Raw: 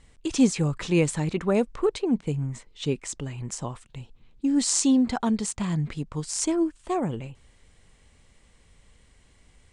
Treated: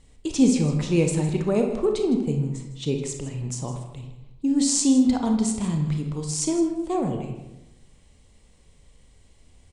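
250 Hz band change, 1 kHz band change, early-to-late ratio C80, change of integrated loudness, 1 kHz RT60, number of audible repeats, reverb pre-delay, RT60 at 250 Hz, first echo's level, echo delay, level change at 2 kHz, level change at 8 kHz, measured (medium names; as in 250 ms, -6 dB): +3.0 dB, -0.5 dB, 8.0 dB, +2.5 dB, 0.90 s, 1, 27 ms, 1.1 s, -15.5 dB, 159 ms, -3.0 dB, +1.5 dB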